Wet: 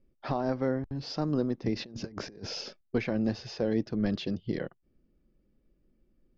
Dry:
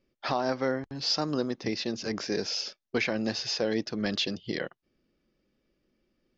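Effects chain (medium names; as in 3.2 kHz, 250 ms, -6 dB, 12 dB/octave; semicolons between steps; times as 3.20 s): tilt EQ -3.5 dB/octave; 1.76–2.81 s: compressor with a negative ratio -33 dBFS, ratio -0.5; trim -5 dB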